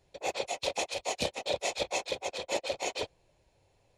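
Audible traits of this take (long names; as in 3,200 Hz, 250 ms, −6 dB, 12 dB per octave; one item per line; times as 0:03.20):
background noise floor −70 dBFS
spectral slope −1.5 dB per octave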